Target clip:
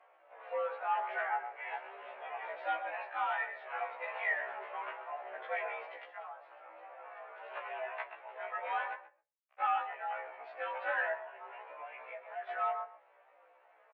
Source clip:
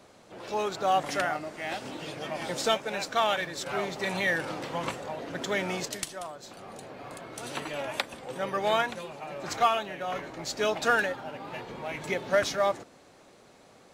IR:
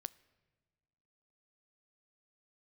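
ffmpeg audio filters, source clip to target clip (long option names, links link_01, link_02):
-filter_complex "[0:a]flanger=delay=4:depth=2.9:regen=71:speed=0.31:shape=sinusoidal,asettb=1/sr,asplit=3[link_01][link_02][link_03];[link_01]atrim=end=8.944[link_04];[link_02]atrim=start=8.94:end=9.6,asetpts=PTS-STARTPTS,afade=type=in:duration=0.004:curve=qsin,afade=type=out:start_time=0.656:duration=0.004:curve=qsin,acrusher=bits=3:mix=0:aa=0.5[link_05];[link_03]atrim=start=9.596[link_06];[link_04][link_05]acrossfade=duration=0.004:curve1=hsin:curve2=qsin[link_07];[link_07][link_06]acrossfade=duration=0.004:curve1=qsin:curve2=hsin,asplit=2[link_08][link_09];[link_09]adelay=128,lowpass=frequency=1500:poles=1,volume=-10dB,asplit=2[link_10][link_11];[link_11]adelay=128,lowpass=frequency=1500:poles=1,volume=0.16[link_12];[link_08][link_10][link_12]amix=inputs=3:normalize=0,asoftclip=type=hard:threshold=-26dB,asettb=1/sr,asplit=3[link_13][link_14][link_15];[link_13]atrim=end=11.144[link_16];[link_14]atrim=start=11.14:end=12.49,asetpts=PTS-STARTPTS,afade=type=in:duration=0.004:curve=qsin,afade=type=out:start_time=1.346:duration=0.004:curve=qsin,acompressor=threshold=-40dB:ratio=6[link_17];[link_15]atrim=start=12.486[link_18];[link_16][link_17]acrossfade=duration=0.004:curve1=hsin:curve2=qsin[link_19];[link_19][link_18]acrossfade=duration=0.004:curve1=qsin:curve2=hsin,flanger=delay=4.7:depth=8.9:regen=-34:speed=0.15:shape=sinusoidal,highpass=frequency=440:width_type=q:width=0.5412,highpass=frequency=440:width_type=q:width=1.307,lowpass=frequency=2400:width_type=q:width=0.5176,lowpass=frequency=2400:width_type=q:width=0.7071,lowpass=frequency=2400:width_type=q:width=1.932,afreqshift=100[link_20];[1:a]atrim=start_sample=2205,afade=type=out:start_time=0.21:duration=0.01,atrim=end_sample=9702[link_21];[link_20][link_21]afir=irnorm=-1:irlink=0,afftfilt=real='re*1.73*eq(mod(b,3),0)':imag='im*1.73*eq(mod(b,3),0)':win_size=2048:overlap=0.75,volume=8.5dB"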